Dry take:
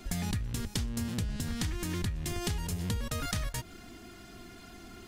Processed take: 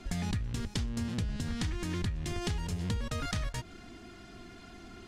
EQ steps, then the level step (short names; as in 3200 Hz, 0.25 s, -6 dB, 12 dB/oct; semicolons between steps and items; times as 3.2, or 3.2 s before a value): air absorption 56 m; 0.0 dB